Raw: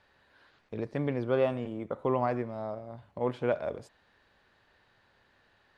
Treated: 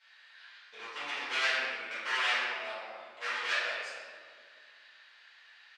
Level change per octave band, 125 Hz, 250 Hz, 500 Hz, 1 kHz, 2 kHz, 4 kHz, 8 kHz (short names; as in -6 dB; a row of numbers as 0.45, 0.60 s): under -35 dB, -23.0 dB, -14.0 dB, -1.5 dB, +14.0 dB, +19.0 dB, n/a